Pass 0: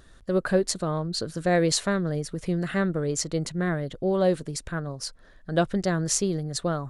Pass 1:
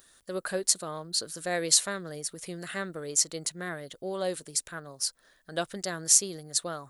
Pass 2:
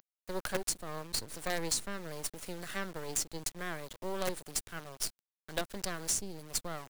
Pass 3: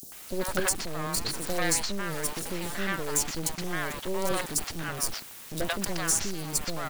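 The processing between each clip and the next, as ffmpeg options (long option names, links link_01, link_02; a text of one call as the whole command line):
ffmpeg -i in.wav -af "aemphasis=mode=production:type=riaa,volume=-6dB" out.wav
ffmpeg -i in.wav -filter_complex "[0:a]acrusher=bits=5:dc=4:mix=0:aa=0.000001,acrossover=split=360[link_01][link_02];[link_02]acompressor=threshold=-32dB:ratio=4[link_03];[link_01][link_03]amix=inputs=2:normalize=0" out.wav
ffmpeg -i in.wav -filter_complex "[0:a]aeval=exprs='val(0)+0.5*0.0112*sgn(val(0))':channel_layout=same,acrossover=split=630|4700[link_01][link_02][link_03];[link_01]adelay=30[link_04];[link_02]adelay=120[link_05];[link_04][link_05][link_03]amix=inputs=3:normalize=0,volume=6.5dB" out.wav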